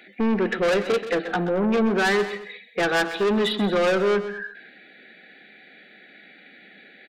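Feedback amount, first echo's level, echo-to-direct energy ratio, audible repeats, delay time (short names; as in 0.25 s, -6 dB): no steady repeat, -12.5 dB, -11.5 dB, 3, 0.129 s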